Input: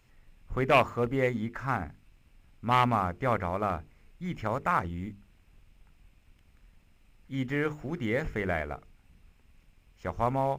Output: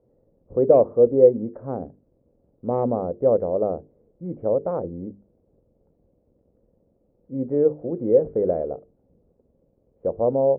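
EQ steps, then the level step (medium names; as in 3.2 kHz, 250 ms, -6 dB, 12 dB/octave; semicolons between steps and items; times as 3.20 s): band-pass filter 350 Hz, Q 0.66; resonant low-pass 520 Hz, resonance Q 4.9; +4.0 dB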